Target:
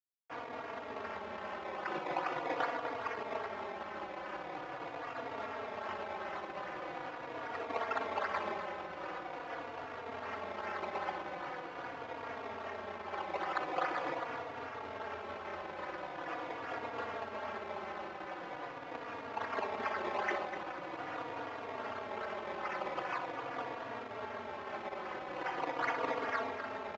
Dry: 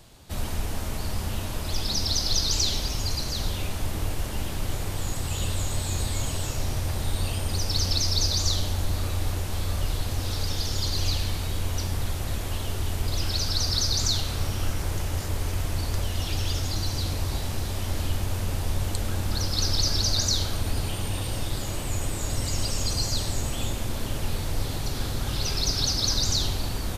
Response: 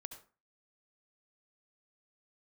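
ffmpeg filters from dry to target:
-filter_complex "[0:a]acompressor=threshold=0.0562:ratio=6,acrusher=samples=21:mix=1:aa=0.000001:lfo=1:lforange=21:lforate=2.5,aresample=16000,aeval=exprs='sgn(val(0))*max(abs(val(0))-0.0106,0)':c=same,aresample=44100,highpass=510,lowpass=2100,asplit=2[s0][s1];[s1]aecho=0:1:61.22|247.8:0.251|0.316[s2];[s0][s2]amix=inputs=2:normalize=0,asplit=2[s3][s4];[s4]adelay=3.6,afreqshift=-0.43[s5];[s3][s5]amix=inputs=2:normalize=1,volume=1.58"

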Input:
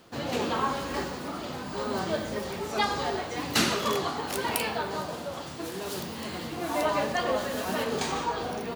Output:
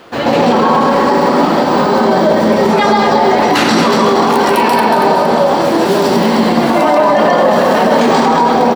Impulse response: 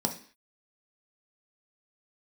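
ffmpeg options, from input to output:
-filter_complex "[0:a]bass=f=250:g=-10,treble=f=4000:g=-11,aecho=1:1:231|462|693|924|1155:0.422|0.198|0.0932|0.0438|0.0206,asplit=2[s0][s1];[1:a]atrim=start_sample=2205,adelay=134[s2];[s1][s2]afir=irnorm=-1:irlink=0,volume=0.668[s3];[s0][s3]amix=inputs=2:normalize=0,alimiter=level_in=10:limit=0.891:release=50:level=0:latency=1,volume=0.891"

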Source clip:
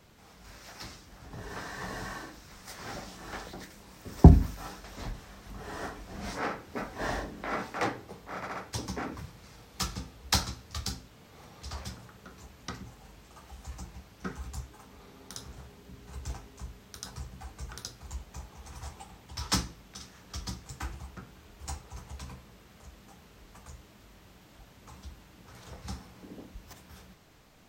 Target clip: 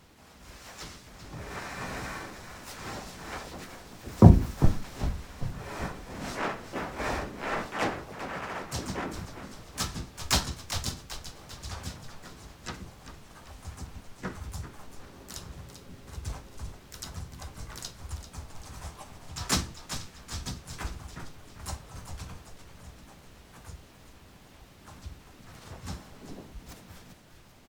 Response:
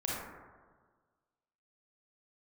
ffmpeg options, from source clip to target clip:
-filter_complex "[0:a]asplit=6[s0][s1][s2][s3][s4][s5];[s1]adelay=393,afreqshift=-60,volume=0.316[s6];[s2]adelay=786,afreqshift=-120,volume=0.158[s7];[s3]adelay=1179,afreqshift=-180,volume=0.0794[s8];[s4]adelay=1572,afreqshift=-240,volume=0.0394[s9];[s5]adelay=1965,afreqshift=-300,volume=0.0197[s10];[s0][s6][s7][s8][s9][s10]amix=inputs=6:normalize=0,asplit=3[s11][s12][s13];[s12]asetrate=33038,aresample=44100,atempo=1.33484,volume=0.562[s14];[s13]asetrate=58866,aresample=44100,atempo=0.749154,volume=0.708[s15];[s11][s14][s15]amix=inputs=3:normalize=0,volume=0.891"

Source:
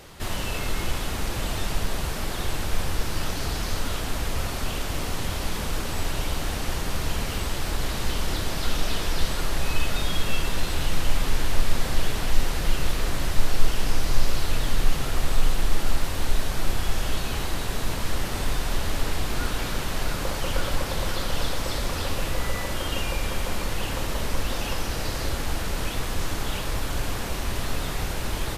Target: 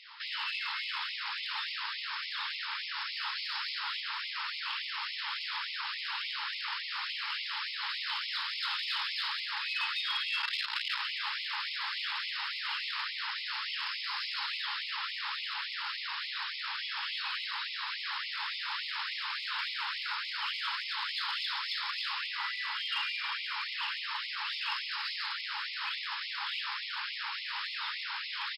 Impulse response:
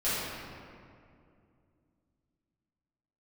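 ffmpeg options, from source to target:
-filter_complex "[0:a]asettb=1/sr,asplit=3[s0][s1][s2];[s0]atrim=end=10.424[s3];[s1]atrim=start=10.42:end=11,asetpts=PTS-STARTPTS,afade=t=in:d=0.004:c=qsin,afade=t=out:st=0.576:d=0.004:c=qsin,aeval=exprs='0.335*(cos(1*acos(clip(val(0)/0.335,-1,1)))-cos(1*PI/2))+0.0376*(cos(7*acos(clip(val(0)/0.335,-1,1)))-cos(7*PI/2))':c=same[s4];[s2]atrim=start=10.996[s5];[s3][s4]acrossfade=d=0.004:c1=hsin:c2=qsin[s6];[s6][s5]acrossfade=d=0.004:c1=qsin:c2=hsin,afftfilt=real='re*between(b*sr/4096,550,5400)':imag='im*between(b*sr/4096,550,5400)':win_size=4096:overlap=0.75,asplit=2[s7][s8];[s8]asoftclip=type=hard:threshold=0.0398,volume=0.447[s9];[s7][s9]amix=inputs=2:normalize=0,asplit=2[s10][s11];[s11]adelay=460.6,volume=0.2,highshelf=f=4000:g=-10.4[s12];[s10][s12]amix=inputs=2:normalize=0,afftfilt=real='re*gte(b*sr/1024,780*pow(2000/780,0.5+0.5*sin(2*PI*3.5*pts/sr)))':imag='im*gte(b*sr/1024,780*pow(2000/780,0.5+0.5*sin(2*PI*3.5*pts/sr)))':win_size=1024:overlap=0.75,volume=0.708"

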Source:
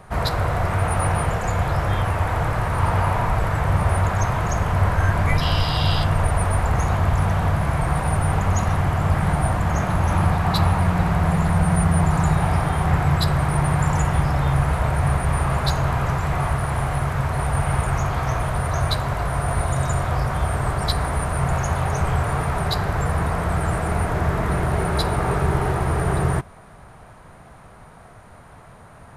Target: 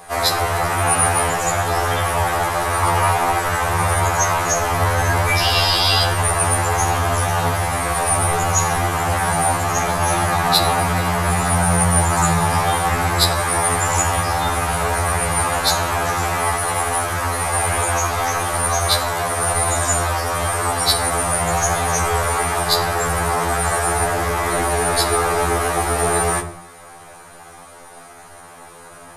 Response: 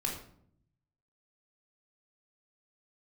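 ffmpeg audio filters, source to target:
-filter_complex "[0:a]bass=f=250:g=-15,treble=f=4000:g=10,asplit=2[s0][s1];[1:a]atrim=start_sample=2205,afade=t=out:st=0.36:d=0.01,atrim=end_sample=16317[s2];[s1][s2]afir=irnorm=-1:irlink=0,volume=0.501[s3];[s0][s3]amix=inputs=2:normalize=0,afftfilt=real='re*2*eq(mod(b,4),0)':imag='im*2*eq(mod(b,4),0)':win_size=2048:overlap=0.75,volume=1.78"

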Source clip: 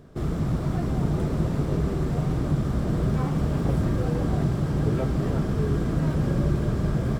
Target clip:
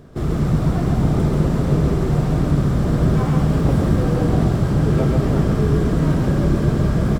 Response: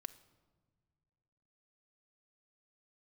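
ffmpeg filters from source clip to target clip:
-af "aecho=1:1:134:0.708,volume=1.88"

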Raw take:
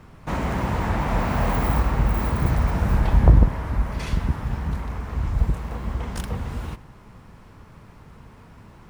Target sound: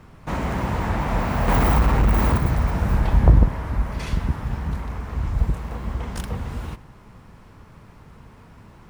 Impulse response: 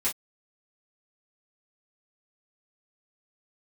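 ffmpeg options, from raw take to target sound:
-filter_complex "[0:a]asettb=1/sr,asplit=3[s0][s1][s2];[s0]atrim=end=1.484[s3];[s1]atrim=start=1.48:end=2.38,asetpts=PTS-STARTPTS,afade=t=in:d=0.004:c=qsin,afade=t=out:st=0.896:d=0.004:c=qsin,aeval=exprs='0.398*(cos(1*acos(clip(val(0)/0.398,-1,1)))-cos(1*PI/2))+0.0891*(cos(5*acos(clip(val(0)/0.398,-1,1)))-cos(5*PI/2))':c=same[s4];[s2]atrim=start=2.376[s5];[s3][s4]acrossfade=d=0.004:c1=hsin:c2=qsin[s6];[s6][s5]acrossfade=d=0.004:c1=qsin:c2=hsin"

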